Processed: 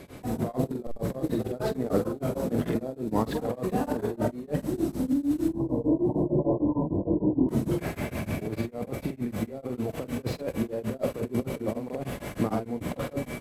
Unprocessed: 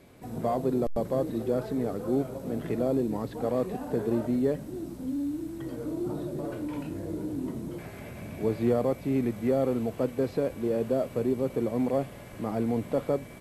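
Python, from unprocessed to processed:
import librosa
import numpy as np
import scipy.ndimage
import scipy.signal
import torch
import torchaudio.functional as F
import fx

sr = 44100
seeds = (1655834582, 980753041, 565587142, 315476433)

y = fx.tracing_dist(x, sr, depth_ms=0.043)
y = fx.over_compress(y, sr, threshold_db=-32.0, ratio=-0.5)
y = fx.brickwall_lowpass(y, sr, high_hz=1100.0, at=(5.48, 7.49))
y = fx.doubler(y, sr, ms=46.0, db=-6.5)
y = fx.echo_feedback(y, sr, ms=747, feedback_pct=33, wet_db=-21)
y = y * np.abs(np.cos(np.pi * 6.6 * np.arange(len(y)) / sr))
y = y * 10.0 ** (7.0 / 20.0)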